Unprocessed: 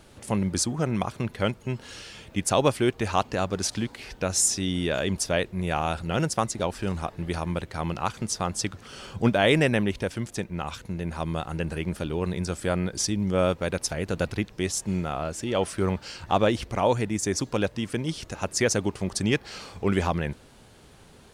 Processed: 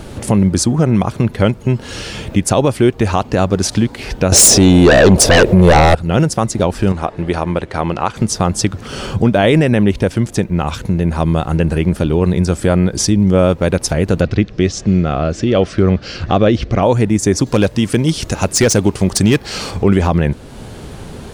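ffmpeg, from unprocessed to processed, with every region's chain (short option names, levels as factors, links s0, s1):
-filter_complex "[0:a]asettb=1/sr,asplit=3[s0][s1][s2];[s0]atrim=end=4.324[s3];[s1]atrim=start=4.32:end=5.95,asetpts=PTS-STARTPTS,afade=t=in:d=0.004:c=qsin,afade=t=out:st=1.626:d=0.004:c=qsin,equalizer=f=550:t=o:w=0.88:g=13,aeval=exprs='0.596*sin(PI/2*5.01*val(0)/0.596)':c=same[s4];[s2]atrim=start=5.946[s5];[s3][s4]acrossfade=d=0.004:c1=hsin:c2=qsin[s6];[s6][s5]acrossfade=d=0.004:c1=qsin:c2=hsin,asettb=1/sr,asplit=3[s7][s8][s9];[s7]atrim=end=6.924[s10];[s8]atrim=start=6.92:end=8.16,asetpts=PTS-STARTPTS,afade=t=in:d=0.004:c=qsin,afade=t=out:st=1.236:d=0.004:c=qsin,lowpass=f=11000:w=0.5412,lowpass=f=11000:w=1.3066,bass=f=250:g=-9,treble=f=4000:g=-6[s11];[s9]atrim=start=8.156[s12];[s10][s11]acrossfade=d=0.004:c1=hsin:c2=qsin[s13];[s13][s12]acrossfade=d=0.004:c1=qsin:c2=hsin,asettb=1/sr,asplit=3[s14][s15][s16];[s14]atrim=end=14.214[s17];[s15]atrim=start=14.21:end=16.83,asetpts=PTS-STARTPTS,afade=t=in:d=0.004:c=qsin,afade=t=out:st=2.616:d=0.004:c=qsin,lowpass=f=5900:w=0.5412,lowpass=f=5900:w=1.3066,equalizer=f=910:t=o:w=0.21:g=-14[s18];[s16]atrim=start=16.826[s19];[s17][s18]acrossfade=d=0.004:c1=hsin:c2=qsin[s20];[s20][s19]acrossfade=d=0.004:c1=qsin:c2=hsin,asettb=1/sr,asplit=3[s21][s22][s23];[s21]atrim=end=17.464[s24];[s22]atrim=start=17.46:end=19.71,asetpts=PTS-STARTPTS,afade=t=in:d=0.004:c=qsin,afade=t=out:st=2.246:d=0.004:c=qsin,highshelf=f=2700:g=7,asoftclip=type=hard:threshold=0.126[s25];[s23]atrim=start=19.706[s26];[s24][s25]acrossfade=d=0.004:c1=hsin:c2=qsin[s27];[s27][s26]acrossfade=d=0.004:c1=qsin:c2=hsin,tiltshelf=f=690:g=4,acompressor=threshold=0.00708:ratio=1.5,alimiter=level_in=10.6:limit=0.891:release=50:level=0:latency=1,volume=0.891"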